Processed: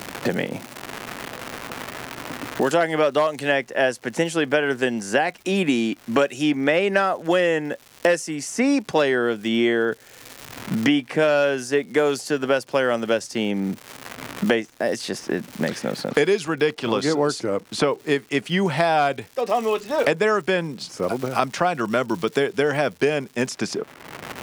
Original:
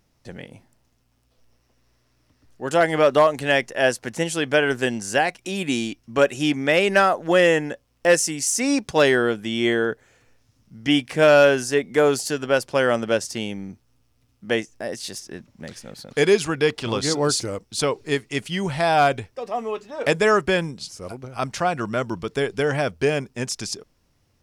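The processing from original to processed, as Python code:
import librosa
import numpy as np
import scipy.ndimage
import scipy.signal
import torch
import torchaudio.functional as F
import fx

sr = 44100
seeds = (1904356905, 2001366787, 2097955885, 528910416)

y = scipy.signal.sosfilt(scipy.signal.butter(2, 160.0, 'highpass', fs=sr, output='sos'), x)
y = fx.high_shelf(y, sr, hz=4400.0, db=-7.0)
y = fx.dmg_crackle(y, sr, seeds[0], per_s=280.0, level_db=-41.0)
y = fx.band_squash(y, sr, depth_pct=100)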